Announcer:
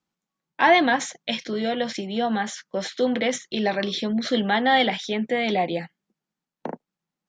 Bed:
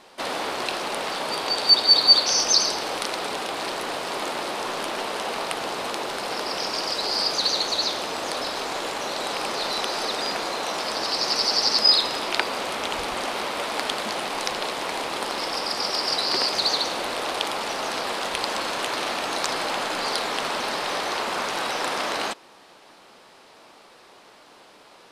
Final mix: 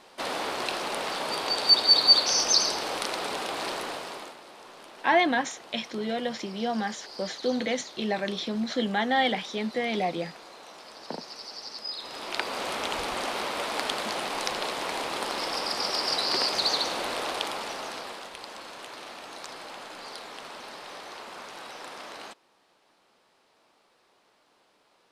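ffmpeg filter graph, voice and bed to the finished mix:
-filter_complex "[0:a]adelay=4450,volume=-5dB[a];[1:a]volume=13dB,afade=t=out:st=3.72:d=0.65:silence=0.158489,afade=t=in:st=11.96:d=0.73:silence=0.158489,afade=t=out:st=17.16:d=1.16:silence=0.251189[b];[a][b]amix=inputs=2:normalize=0"

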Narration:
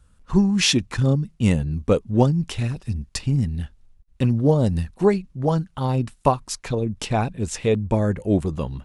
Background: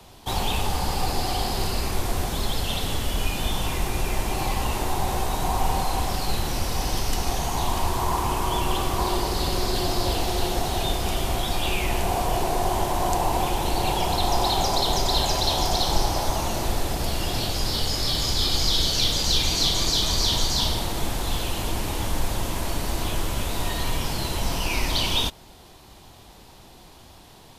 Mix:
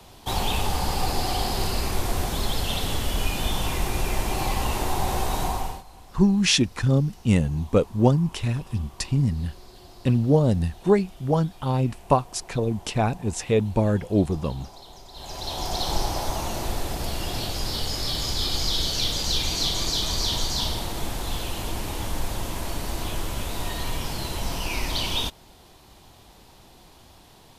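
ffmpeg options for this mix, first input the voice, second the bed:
-filter_complex "[0:a]adelay=5850,volume=-1dB[a];[1:a]volume=20dB,afade=t=out:st=5.4:d=0.43:silence=0.0707946,afade=t=in:st=15.13:d=0.78:silence=0.1[b];[a][b]amix=inputs=2:normalize=0"

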